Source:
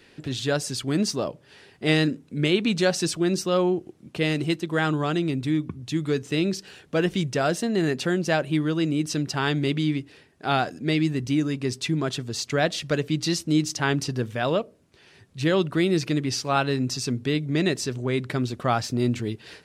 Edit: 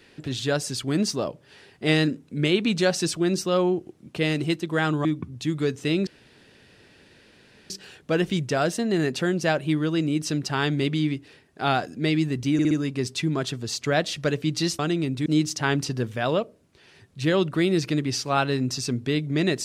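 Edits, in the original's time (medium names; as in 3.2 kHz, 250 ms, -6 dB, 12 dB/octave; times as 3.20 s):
5.05–5.52 s: move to 13.45 s
6.54 s: insert room tone 1.63 s
11.37 s: stutter 0.06 s, 4 plays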